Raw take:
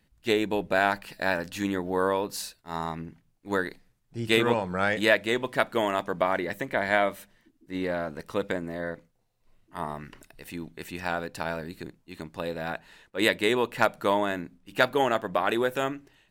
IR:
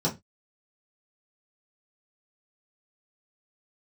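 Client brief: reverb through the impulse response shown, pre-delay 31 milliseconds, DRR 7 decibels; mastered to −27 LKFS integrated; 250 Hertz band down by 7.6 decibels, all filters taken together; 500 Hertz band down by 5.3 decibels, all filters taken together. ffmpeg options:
-filter_complex "[0:a]equalizer=frequency=250:width_type=o:gain=-9,equalizer=frequency=500:width_type=o:gain=-4.5,asplit=2[link_01][link_02];[1:a]atrim=start_sample=2205,adelay=31[link_03];[link_02][link_03]afir=irnorm=-1:irlink=0,volume=-16.5dB[link_04];[link_01][link_04]amix=inputs=2:normalize=0,volume=2dB"

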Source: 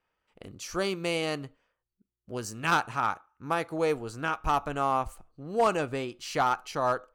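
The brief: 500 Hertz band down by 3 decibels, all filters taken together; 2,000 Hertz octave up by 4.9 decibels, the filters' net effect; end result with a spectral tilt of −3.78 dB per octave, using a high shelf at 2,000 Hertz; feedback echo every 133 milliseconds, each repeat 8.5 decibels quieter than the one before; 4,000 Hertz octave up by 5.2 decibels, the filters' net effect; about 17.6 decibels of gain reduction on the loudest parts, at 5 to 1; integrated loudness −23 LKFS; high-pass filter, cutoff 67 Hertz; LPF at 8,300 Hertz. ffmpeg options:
ffmpeg -i in.wav -af "highpass=67,lowpass=8300,equalizer=frequency=500:width_type=o:gain=-4,highshelf=frequency=2000:gain=-4.5,equalizer=frequency=2000:width_type=o:gain=8,equalizer=frequency=4000:width_type=o:gain=8.5,acompressor=threshold=-38dB:ratio=5,aecho=1:1:133|266|399|532:0.376|0.143|0.0543|0.0206,volume=17.5dB" out.wav

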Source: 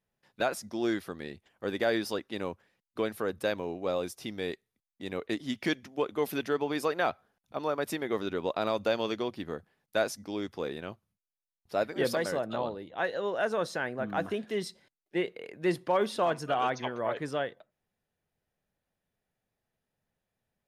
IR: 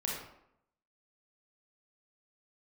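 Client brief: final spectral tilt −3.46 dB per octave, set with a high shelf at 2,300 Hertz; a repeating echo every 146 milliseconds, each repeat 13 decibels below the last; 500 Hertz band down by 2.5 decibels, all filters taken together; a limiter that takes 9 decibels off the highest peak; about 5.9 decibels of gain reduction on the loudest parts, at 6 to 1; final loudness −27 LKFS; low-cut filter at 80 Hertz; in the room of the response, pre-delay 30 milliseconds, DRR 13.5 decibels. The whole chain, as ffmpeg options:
-filter_complex "[0:a]highpass=80,equalizer=frequency=500:width_type=o:gain=-3.5,highshelf=frequency=2300:gain=6,acompressor=threshold=-30dB:ratio=6,alimiter=level_in=1.5dB:limit=-24dB:level=0:latency=1,volume=-1.5dB,aecho=1:1:146|292|438:0.224|0.0493|0.0108,asplit=2[link_01][link_02];[1:a]atrim=start_sample=2205,adelay=30[link_03];[link_02][link_03]afir=irnorm=-1:irlink=0,volume=-17.5dB[link_04];[link_01][link_04]amix=inputs=2:normalize=0,volume=11dB"

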